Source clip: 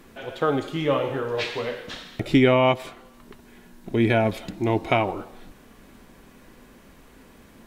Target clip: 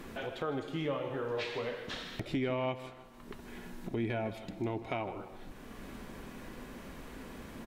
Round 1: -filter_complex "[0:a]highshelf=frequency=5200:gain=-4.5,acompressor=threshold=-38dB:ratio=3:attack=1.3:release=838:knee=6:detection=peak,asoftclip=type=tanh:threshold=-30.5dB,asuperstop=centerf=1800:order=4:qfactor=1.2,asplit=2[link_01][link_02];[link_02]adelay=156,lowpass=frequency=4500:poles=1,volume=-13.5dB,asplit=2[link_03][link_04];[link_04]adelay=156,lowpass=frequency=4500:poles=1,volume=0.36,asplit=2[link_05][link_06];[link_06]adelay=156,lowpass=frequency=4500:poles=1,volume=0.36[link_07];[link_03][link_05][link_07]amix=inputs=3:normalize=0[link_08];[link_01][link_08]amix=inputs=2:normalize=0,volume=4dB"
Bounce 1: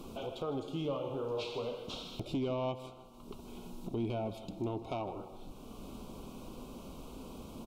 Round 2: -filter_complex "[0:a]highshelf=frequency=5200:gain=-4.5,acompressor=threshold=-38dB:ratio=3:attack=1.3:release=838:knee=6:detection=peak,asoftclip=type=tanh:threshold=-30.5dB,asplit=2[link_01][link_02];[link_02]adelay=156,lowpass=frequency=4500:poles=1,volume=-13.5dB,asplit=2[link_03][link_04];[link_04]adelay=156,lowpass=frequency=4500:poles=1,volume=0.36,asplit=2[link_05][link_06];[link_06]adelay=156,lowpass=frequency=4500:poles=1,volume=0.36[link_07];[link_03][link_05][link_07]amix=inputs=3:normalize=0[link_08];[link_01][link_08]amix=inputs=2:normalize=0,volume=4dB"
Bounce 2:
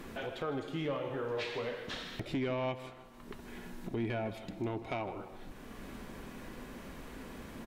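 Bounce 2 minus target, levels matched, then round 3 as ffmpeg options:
soft clipping: distortion +11 dB
-filter_complex "[0:a]highshelf=frequency=5200:gain=-4.5,acompressor=threshold=-38dB:ratio=3:attack=1.3:release=838:knee=6:detection=peak,asoftclip=type=tanh:threshold=-23.5dB,asplit=2[link_01][link_02];[link_02]adelay=156,lowpass=frequency=4500:poles=1,volume=-13.5dB,asplit=2[link_03][link_04];[link_04]adelay=156,lowpass=frequency=4500:poles=1,volume=0.36,asplit=2[link_05][link_06];[link_06]adelay=156,lowpass=frequency=4500:poles=1,volume=0.36[link_07];[link_03][link_05][link_07]amix=inputs=3:normalize=0[link_08];[link_01][link_08]amix=inputs=2:normalize=0,volume=4dB"

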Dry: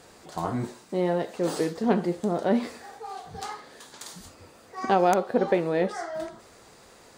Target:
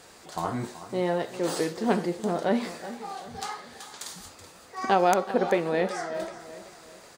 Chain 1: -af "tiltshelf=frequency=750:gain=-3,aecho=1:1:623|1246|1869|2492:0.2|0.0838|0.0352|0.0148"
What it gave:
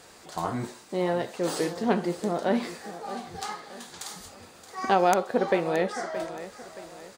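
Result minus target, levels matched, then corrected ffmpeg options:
echo 245 ms late
-af "tiltshelf=frequency=750:gain=-3,aecho=1:1:378|756|1134|1512:0.2|0.0838|0.0352|0.0148"

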